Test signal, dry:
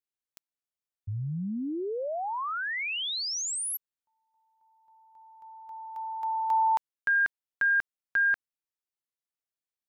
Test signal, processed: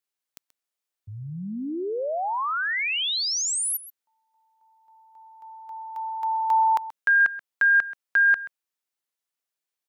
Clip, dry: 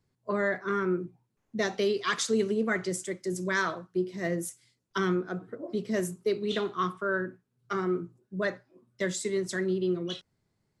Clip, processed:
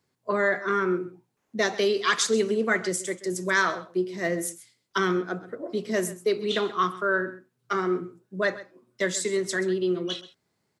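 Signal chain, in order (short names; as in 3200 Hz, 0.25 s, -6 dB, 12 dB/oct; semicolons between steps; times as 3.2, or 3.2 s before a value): HPF 360 Hz 6 dB/oct; on a send: echo 0.131 s -16.5 dB; on the sum: gain +6 dB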